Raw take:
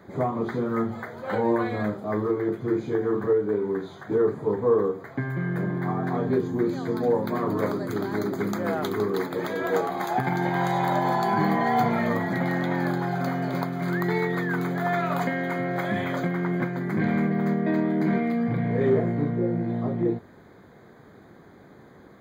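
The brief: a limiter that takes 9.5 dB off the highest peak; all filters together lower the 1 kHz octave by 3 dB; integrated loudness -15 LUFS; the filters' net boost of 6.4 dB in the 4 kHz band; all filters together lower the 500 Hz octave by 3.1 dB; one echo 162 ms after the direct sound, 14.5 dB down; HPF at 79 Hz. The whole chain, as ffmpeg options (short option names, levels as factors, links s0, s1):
-af "highpass=79,equalizer=f=500:t=o:g=-3.5,equalizer=f=1000:t=o:g=-3,equalizer=f=4000:t=o:g=7.5,alimiter=limit=0.0841:level=0:latency=1,aecho=1:1:162:0.188,volume=5.62"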